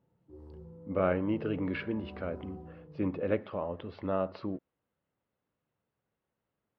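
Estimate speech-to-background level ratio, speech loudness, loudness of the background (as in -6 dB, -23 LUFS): 14.5 dB, -34.0 LUFS, -48.5 LUFS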